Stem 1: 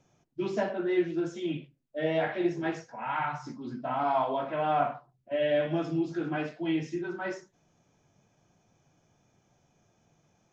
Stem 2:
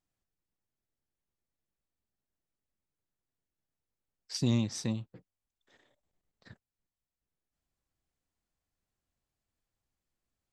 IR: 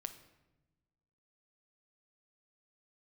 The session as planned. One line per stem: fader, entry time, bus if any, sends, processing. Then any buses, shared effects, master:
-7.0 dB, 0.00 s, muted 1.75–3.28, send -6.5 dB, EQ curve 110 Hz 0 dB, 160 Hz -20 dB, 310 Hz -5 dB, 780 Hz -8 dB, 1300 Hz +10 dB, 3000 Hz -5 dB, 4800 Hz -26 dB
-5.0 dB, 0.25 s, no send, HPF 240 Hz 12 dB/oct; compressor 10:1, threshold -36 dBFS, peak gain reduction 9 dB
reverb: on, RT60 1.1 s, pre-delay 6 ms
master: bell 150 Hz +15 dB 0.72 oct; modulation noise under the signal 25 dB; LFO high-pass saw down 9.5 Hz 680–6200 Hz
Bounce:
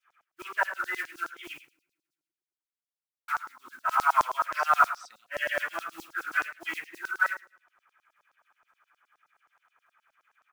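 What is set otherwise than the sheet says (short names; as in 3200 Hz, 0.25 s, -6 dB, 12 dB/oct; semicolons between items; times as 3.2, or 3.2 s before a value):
stem 1 -7.0 dB -> +1.0 dB; stem 2 -5.0 dB -> -11.0 dB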